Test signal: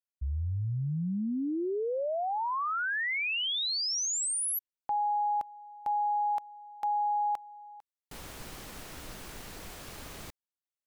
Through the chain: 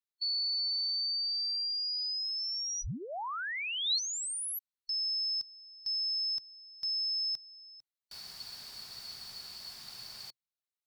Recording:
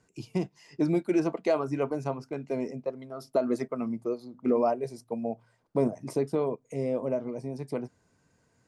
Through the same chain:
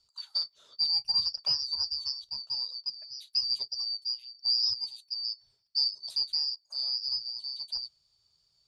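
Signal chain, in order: four-band scrambler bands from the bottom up 2341; thirty-one-band EQ 125 Hz +4 dB, 315 Hz -10 dB, 500 Hz -8 dB, 4000 Hz +9 dB; gain -5.5 dB

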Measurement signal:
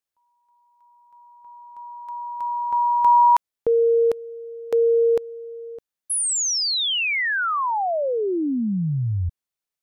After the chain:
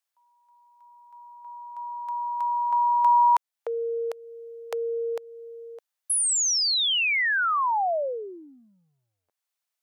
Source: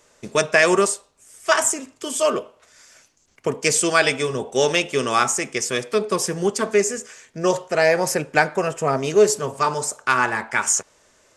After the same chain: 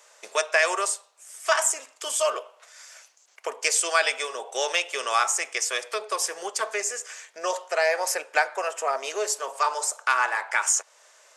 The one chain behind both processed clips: compressor 1.5:1, threshold -32 dBFS; HPF 580 Hz 24 dB/oct; gain +3 dB

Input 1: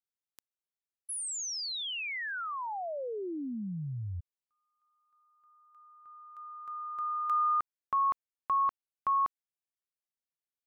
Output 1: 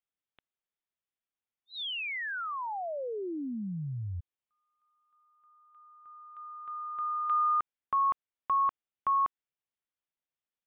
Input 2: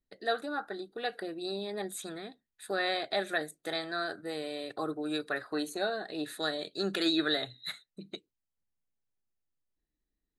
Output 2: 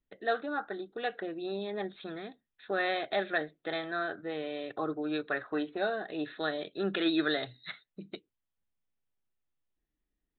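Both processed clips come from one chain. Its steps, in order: downsampling 8000 Hz; gain +1 dB

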